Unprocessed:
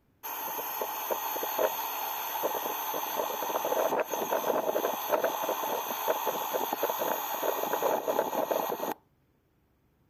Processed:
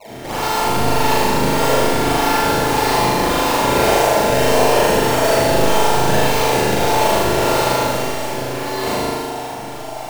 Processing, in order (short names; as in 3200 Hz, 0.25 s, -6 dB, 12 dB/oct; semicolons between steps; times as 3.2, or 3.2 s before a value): in parallel at +3 dB: limiter -23.5 dBFS, peak gain reduction 11.5 dB; on the sum: band noise 590–950 Hz -39 dBFS; 7.71–8.76 resonator 96 Hz, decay 0.3 s, harmonics all, mix 90%; decimation with a swept rate 25×, swing 160% 1.7 Hz; on a send: flutter echo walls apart 6.7 m, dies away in 1 s; on the sum: Schroeder reverb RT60 2 s, combs from 32 ms, DRR -7 dB; gain -2 dB